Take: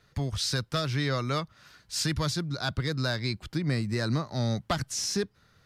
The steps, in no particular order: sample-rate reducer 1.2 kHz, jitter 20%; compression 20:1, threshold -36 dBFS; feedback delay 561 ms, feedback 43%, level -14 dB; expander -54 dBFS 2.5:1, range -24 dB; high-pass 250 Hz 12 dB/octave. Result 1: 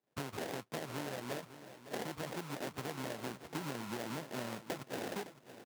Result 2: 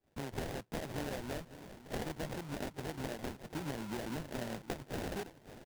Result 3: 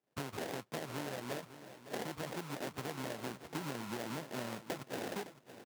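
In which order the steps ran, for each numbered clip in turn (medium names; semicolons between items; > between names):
sample-rate reducer > high-pass > expander > compression > feedback delay; expander > high-pass > compression > feedback delay > sample-rate reducer; sample-rate reducer > high-pass > compression > feedback delay > expander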